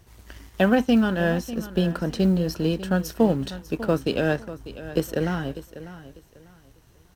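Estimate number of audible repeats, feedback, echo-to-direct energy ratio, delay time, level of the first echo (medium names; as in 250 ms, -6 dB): 2, 25%, -14.0 dB, 596 ms, -14.5 dB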